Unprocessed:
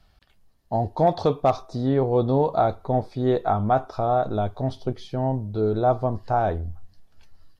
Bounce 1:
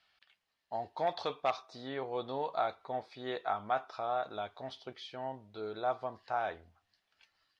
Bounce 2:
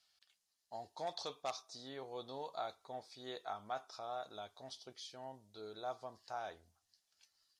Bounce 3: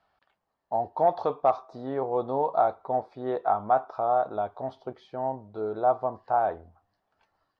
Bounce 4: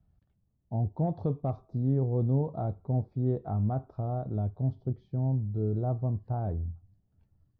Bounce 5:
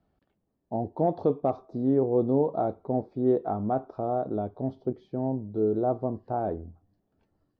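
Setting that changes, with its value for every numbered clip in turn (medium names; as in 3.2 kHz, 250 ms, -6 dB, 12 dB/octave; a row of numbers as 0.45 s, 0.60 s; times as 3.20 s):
band-pass filter, frequency: 2.5 kHz, 6.7 kHz, 940 Hz, 120 Hz, 310 Hz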